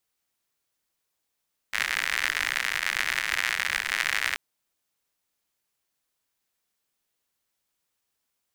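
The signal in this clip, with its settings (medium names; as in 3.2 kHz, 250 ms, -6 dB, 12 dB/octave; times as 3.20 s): rain from filtered ticks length 2.63 s, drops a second 100, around 1.9 kHz, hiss -25 dB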